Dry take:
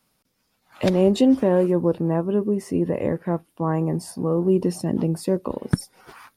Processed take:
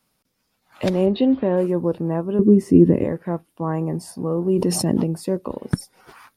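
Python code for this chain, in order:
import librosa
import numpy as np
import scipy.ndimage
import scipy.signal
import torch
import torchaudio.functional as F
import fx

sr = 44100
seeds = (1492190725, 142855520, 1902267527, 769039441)

y = fx.cheby1_lowpass(x, sr, hz=4200.0, order=5, at=(1.05, 1.56), fade=0.02)
y = fx.low_shelf_res(y, sr, hz=460.0, db=10.0, q=1.5, at=(2.39, 3.04))
y = fx.env_flatten(y, sr, amount_pct=70, at=(4.53, 5.04))
y = y * librosa.db_to_amplitude(-1.0)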